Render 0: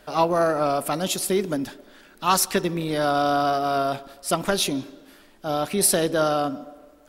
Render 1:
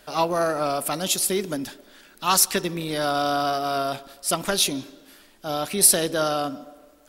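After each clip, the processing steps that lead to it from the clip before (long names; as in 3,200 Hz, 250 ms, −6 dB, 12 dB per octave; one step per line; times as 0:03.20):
high-shelf EQ 2,400 Hz +8 dB
level −3 dB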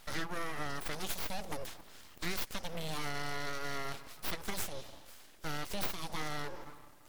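downward compressor 5 to 1, threshold −31 dBFS, peak gain reduction 18 dB
full-wave rectification
level −2 dB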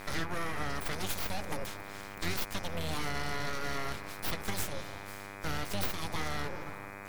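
sub-octave generator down 1 octave, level 0 dB
in parallel at −1 dB: downward compressor, threshold −42 dBFS, peak gain reduction 13.5 dB
on the sum: hum with harmonics 100 Hz, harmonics 25, −46 dBFS −1 dB per octave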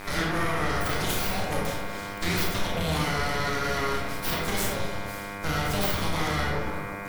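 convolution reverb RT60 1.1 s, pre-delay 24 ms, DRR −2.5 dB
level +4.5 dB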